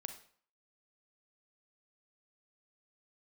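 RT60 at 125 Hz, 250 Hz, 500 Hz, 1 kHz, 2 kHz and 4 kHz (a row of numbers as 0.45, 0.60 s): 0.50, 0.50, 0.50, 0.55, 0.50, 0.45 s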